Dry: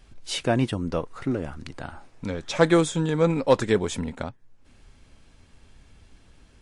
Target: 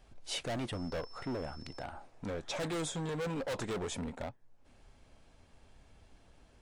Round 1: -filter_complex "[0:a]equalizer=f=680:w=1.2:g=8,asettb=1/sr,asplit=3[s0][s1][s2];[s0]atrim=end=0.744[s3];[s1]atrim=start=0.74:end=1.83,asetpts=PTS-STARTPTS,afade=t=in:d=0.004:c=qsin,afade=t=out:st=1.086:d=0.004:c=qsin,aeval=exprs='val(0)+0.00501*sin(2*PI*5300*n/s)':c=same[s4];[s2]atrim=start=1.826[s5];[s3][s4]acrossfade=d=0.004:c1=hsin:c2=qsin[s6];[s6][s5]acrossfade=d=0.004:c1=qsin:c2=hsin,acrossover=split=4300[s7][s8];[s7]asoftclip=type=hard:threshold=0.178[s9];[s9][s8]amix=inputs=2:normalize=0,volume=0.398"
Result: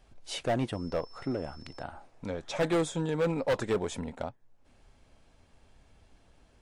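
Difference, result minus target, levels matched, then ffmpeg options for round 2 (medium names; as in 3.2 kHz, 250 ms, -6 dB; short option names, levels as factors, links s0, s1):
hard clipper: distortion -6 dB
-filter_complex "[0:a]equalizer=f=680:w=1.2:g=8,asettb=1/sr,asplit=3[s0][s1][s2];[s0]atrim=end=0.744[s3];[s1]atrim=start=0.74:end=1.83,asetpts=PTS-STARTPTS,afade=t=in:d=0.004:c=qsin,afade=t=out:st=1.086:d=0.004:c=qsin,aeval=exprs='val(0)+0.00501*sin(2*PI*5300*n/s)':c=same[s4];[s2]atrim=start=1.826[s5];[s3][s4]acrossfade=d=0.004:c1=hsin:c2=qsin[s6];[s6][s5]acrossfade=d=0.004:c1=qsin:c2=hsin,acrossover=split=4300[s7][s8];[s7]asoftclip=type=hard:threshold=0.0501[s9];[s9][s8]amix=inputs=2:normalize=0,volume=0.398"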